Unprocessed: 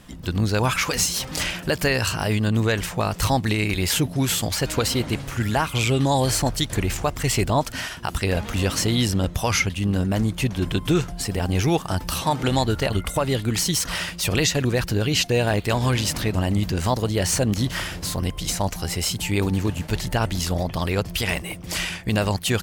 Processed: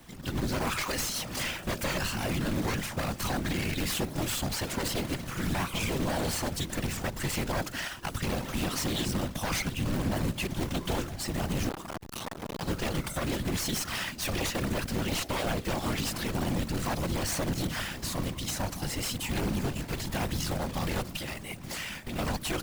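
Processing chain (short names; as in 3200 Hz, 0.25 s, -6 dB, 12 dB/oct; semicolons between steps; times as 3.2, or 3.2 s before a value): one-sided fold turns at -23 dBFS; low shelf 100 Hz -2.5 dB; 21.07–22.19 compressor 5:1, threshold -28 dBFS, peak gain reduction 9.5 dB; high shelf 2700 Hz -3.5 dB; notches 60/120/180/240/300/360/420/480/540 Hz; companded quantiser 4-bit; whisperiser; notch 430 Hz, Q 12; limiter -16.5 dBFS, peak gain reduction 7 dB; 11.69–12.63 core saturation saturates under 890 Hz; gain -4 dB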